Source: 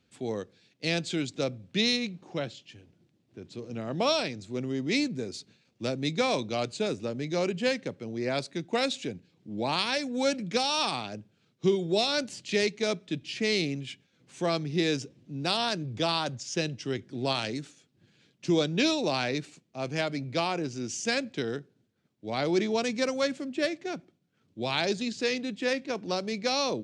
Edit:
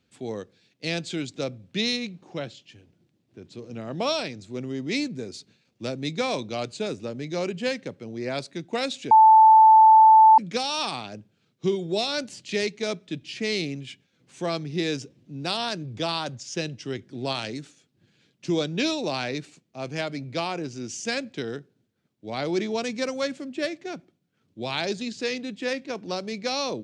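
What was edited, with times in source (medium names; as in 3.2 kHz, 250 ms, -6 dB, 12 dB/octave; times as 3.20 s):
9.11–10.38 s: bleep 879 Hz -9.5 dBFS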